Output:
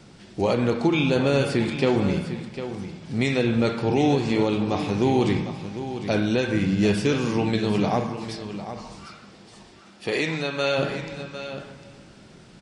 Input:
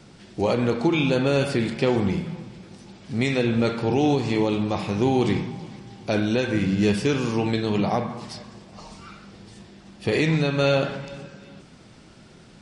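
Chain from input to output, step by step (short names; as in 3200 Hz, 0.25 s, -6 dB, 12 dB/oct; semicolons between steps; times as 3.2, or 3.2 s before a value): 9.05–10.77 HPF 220 Hz -> 640 Hz 6 dB/oct; echo 0.752 s -11 dB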